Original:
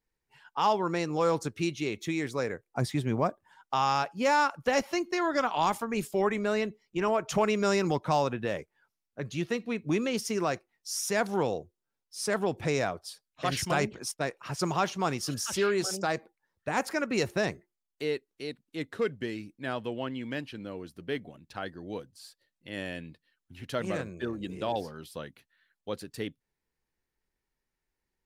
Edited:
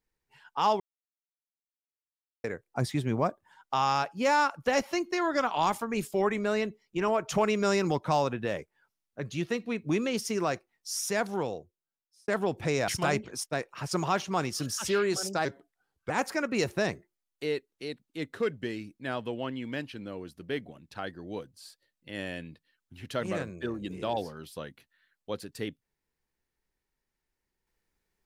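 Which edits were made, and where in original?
0.80–2.44 s: mute
11.01–12.28 s: fade out
12.88–13.56 s: delete
16.13–16.69 s: speed 86%

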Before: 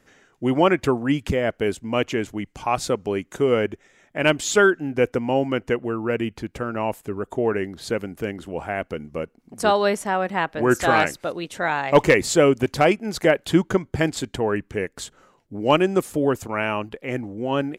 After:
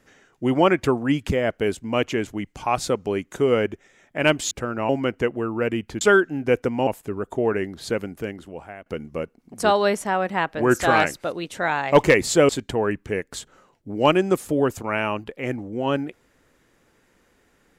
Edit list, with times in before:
4.51–5.37 s: swap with 6.49–6.87 s
8.04–8.86 s: fade out, to -18.5 dB
12.49–14.14 s: delete

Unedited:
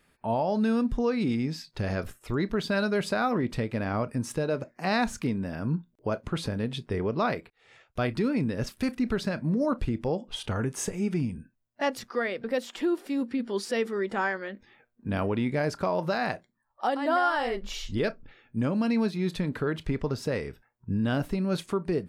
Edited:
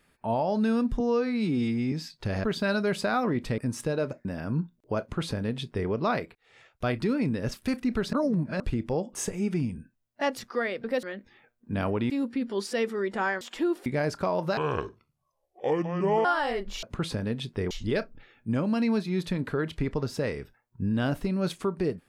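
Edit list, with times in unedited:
1.00–1.46 s: stretch 2×
1.98–2.52 s: delete
3.66–4.09 s: delete
4.76–5.40 s: delete
6.16–7.04 s: copy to 17.79 s
9.28–9.75 s: reverse
10.30–10.75 s: delete
12.63–13.08 s: swap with 14.39–15.46 s
16.17–17.21 s: speed 62%

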